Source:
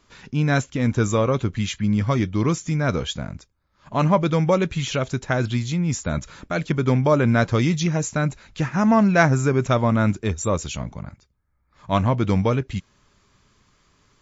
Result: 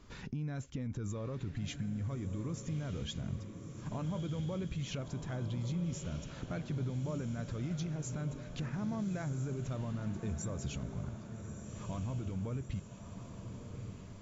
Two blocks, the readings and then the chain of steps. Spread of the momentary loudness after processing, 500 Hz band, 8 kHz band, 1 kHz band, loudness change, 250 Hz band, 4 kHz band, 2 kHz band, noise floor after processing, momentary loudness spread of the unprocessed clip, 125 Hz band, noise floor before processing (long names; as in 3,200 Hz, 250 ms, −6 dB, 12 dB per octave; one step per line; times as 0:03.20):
9 LU, −22.0 dB, can't be measured, −25.0 dB, −18.0 dB, −17.0 dB, −16.5 dB, −24.0 dB, −49 dBFS, 11 LU, −14.5 dB, −66 dBFS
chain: low-shelf EQ 440 Hz +11 dB
brickwall limiter −14.5 dBFS, peak gain reduction 15.5 dB
downward compressor 2 to 1, threshold −42 dBFS, peak gain reduction 13 dB
on a send: feedback delay with all-pass diffusion 1,287 ms, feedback 55%, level −8 dB
on the sum: level −4 dB